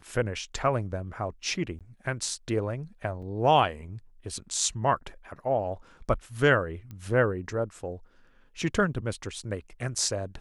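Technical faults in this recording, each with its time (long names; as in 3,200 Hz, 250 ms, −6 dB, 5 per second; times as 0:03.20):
0:01.79–0:01.81: drop-out 17 ms
0:03.22–0:03.23: drop-out 5.2 ms
0:06.91: click −29 dBFS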